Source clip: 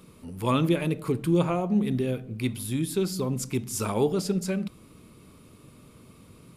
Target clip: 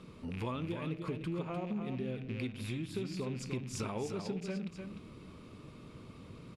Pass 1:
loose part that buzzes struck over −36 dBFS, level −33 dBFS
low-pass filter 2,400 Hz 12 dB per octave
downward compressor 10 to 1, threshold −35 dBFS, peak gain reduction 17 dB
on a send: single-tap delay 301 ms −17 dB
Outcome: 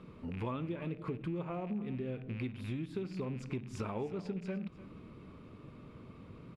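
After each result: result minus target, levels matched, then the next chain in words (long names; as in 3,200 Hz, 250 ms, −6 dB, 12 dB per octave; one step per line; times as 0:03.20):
4,000 Hz band −7.0 dB; echo-to-direct −10 dB
loose part that buzzes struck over −36 dBFS, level −33 dBFS
low-pass filter 4,800 Hz 12 dB per octave
downward compressor 10 to 1, threshold −35 dBFS, peak gain reduction 17 dB
on a send: single-tap delay 301 ms −17 dB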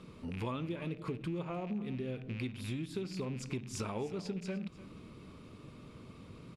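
echo-to-direct −10 dB
loose part that buzzes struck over −36 dBFS, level −33 dBFS
low-pass filter 4,800 Hz 12 dB per octave
downward compressor 10 to 1, threshold −35 dBFS, peak gain reduction 17 dB
on a send: single-tap delay 301 ms −7 dB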